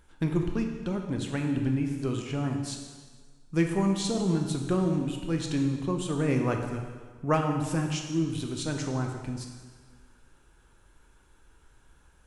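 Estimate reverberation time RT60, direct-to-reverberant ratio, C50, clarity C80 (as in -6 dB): 1.5 s, 3.0 dB, 5.0 dB, 6.5 dB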